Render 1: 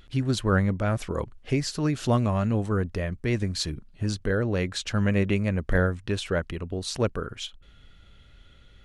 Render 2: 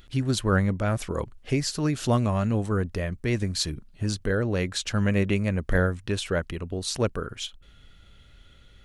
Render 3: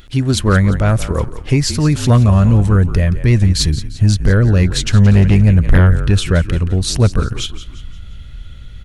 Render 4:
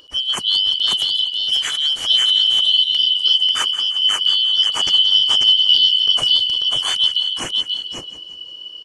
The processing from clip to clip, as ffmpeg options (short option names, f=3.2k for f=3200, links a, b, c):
-af "highshelf=f=6.9k:g=7"
-filter_complex "[0:a]asplit=5[a][b][c][d][e];[b]adelay=174,afreqshift=-47,volume=-14dB[f];[c]adelay=348,afreqshift=-94,volume=-21.3dB[g];[d]adelay=522,afreqshift=-141,volume=-28.7dB[h];[e]adelay=696,afreqshift=-188,volume=-36dB[i];[a][f][g][h][i]amix=inputs=5:normalize=0,asubboost=boost=3.5:cutoff=200,aeval=exprs='0.841*(cos(1*acos(clip(val(0)/0.841,-1,1)))-cos(1*PI/2))+0.376*(cos(5*acos(clip(val(0)/0.841,-1,1)))-cos(5*PI/2))':c=same"
-filter_complex "[0:a]afftfilt=real='real(if(lt(b,272),68*(eq(floor(b/68),0)*2+eq(floor(b/68),1)*3+eq(floor(b/68),2)*0+eq(floor(b/68),3)*1)+mod(b,68),b),0)':imag='imag(if(lt(b,272),68*(eq(floor(b/68),0)*2+eq(floor(b/68),1)*3+eq(floor(b/68),2)*0+eq(floor(b/68),3)*1)+mod(b,68),b),0)':win_size=2048:overlap=0.75,asplit=2[a][b];[b]aecho=0:1:541:0.668[c];[a][c]amix=inputs=2:normalize=0,volume=-6.5dB"